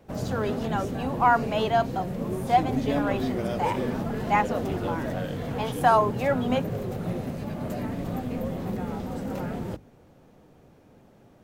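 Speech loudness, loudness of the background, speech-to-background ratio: -27.0 LUFS, -31.0 LUFS, 4.0 dB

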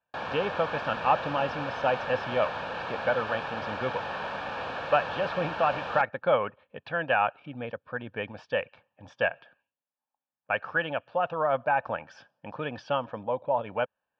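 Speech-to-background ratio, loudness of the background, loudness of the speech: 4.5 dB, -34.5 LUFS, -30.0 LUFS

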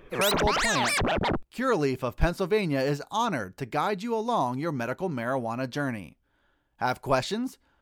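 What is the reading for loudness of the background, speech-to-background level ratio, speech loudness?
-26.0 LUFS, -3.0 dB, -29.0 LUFS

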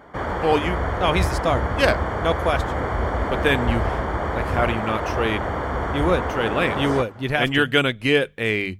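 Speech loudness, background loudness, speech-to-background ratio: -23.0 LUFS, -25.5 LUFS, 2.5 dB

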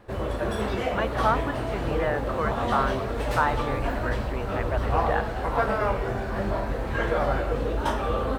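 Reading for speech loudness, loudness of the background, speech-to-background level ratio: -30.5 LUFS, -27.5 LUFS, -3.0 dB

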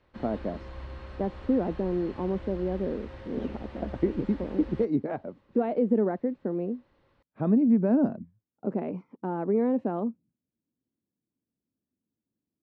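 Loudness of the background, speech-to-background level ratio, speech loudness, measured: -44.0 LUFS, 15.0 dB, -29.0 LUFS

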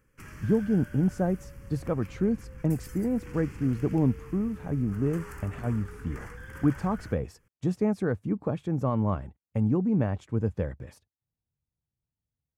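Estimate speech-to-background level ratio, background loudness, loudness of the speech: 16.0 dB, -45.0 LUFS, -29.0 LUFS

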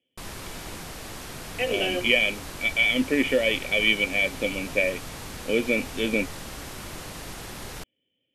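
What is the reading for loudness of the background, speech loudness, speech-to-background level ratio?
-37.5 LUFS, -23.5 LUFS, 14.0 dB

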